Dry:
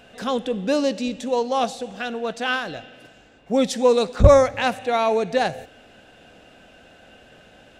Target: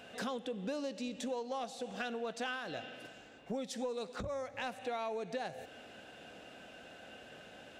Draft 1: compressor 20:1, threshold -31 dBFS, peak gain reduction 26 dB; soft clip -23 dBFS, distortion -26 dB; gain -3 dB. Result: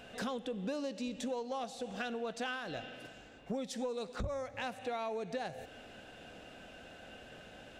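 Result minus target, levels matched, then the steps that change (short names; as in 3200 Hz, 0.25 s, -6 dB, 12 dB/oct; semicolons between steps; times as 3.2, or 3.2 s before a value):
125 Hz band +3.0 dB
add after compressor: HPF 160 Hz 6 dB/oct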